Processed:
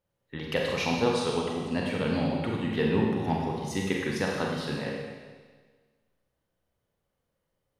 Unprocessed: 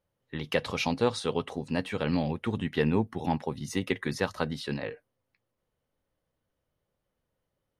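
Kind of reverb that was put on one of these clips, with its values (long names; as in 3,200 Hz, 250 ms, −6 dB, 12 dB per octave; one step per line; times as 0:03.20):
four-comb reverb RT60 1.5 s, combs from 32 ms, DRR −1.5 dB
level −2 dB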